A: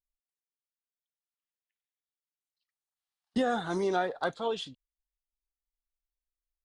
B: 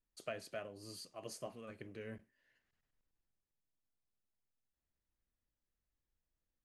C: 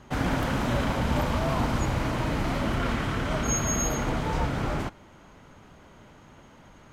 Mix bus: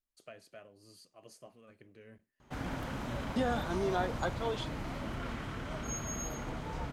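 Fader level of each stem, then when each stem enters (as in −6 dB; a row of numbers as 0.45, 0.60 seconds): −4.0, −7.5, −12.0 decibels; 0.00, 0.00, 2.40 seconds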